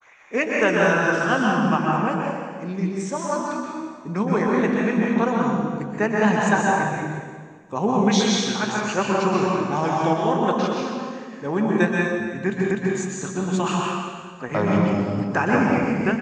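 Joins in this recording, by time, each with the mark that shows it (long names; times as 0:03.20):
0:12.71: the same again, the last 0.25 s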